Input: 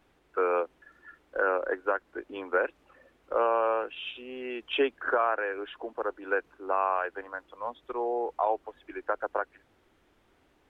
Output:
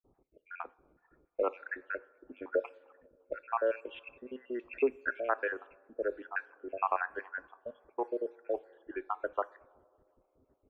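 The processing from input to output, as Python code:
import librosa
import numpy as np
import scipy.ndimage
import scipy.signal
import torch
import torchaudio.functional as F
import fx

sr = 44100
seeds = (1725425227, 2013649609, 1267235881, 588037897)

y = fx.spec_dropout(x, sr, seeds[0], share_pct=69)
y = fx.rev_double_slope(y, sr, seeds[1], early_s=0.31, late_s=4.1, knee_db=-21, drr_db=14.5)
y = fx.env_lowpass(y, sr, base_hz=610.0, full_db=-29.5)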